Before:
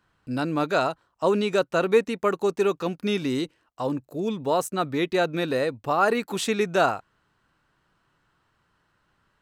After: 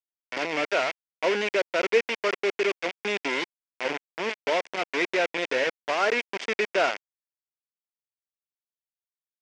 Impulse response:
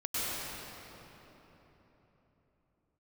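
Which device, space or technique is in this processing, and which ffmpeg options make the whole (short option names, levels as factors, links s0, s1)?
hand-held game console: -af "acrusher=bits=3:mix=0:aa=0.000001,highpass=430,equalizer=f=830:t=q:w=4:g=-6,equalizer=f=1200:t=q:w=4:g=-8,equalizer=f=2200:t=q:w=4:g=6,equalizer=f=4000:t=q:w=4:g=-10,lowpass=f=4900:w=0.5412,lowpass=f=4900:w=1.3066"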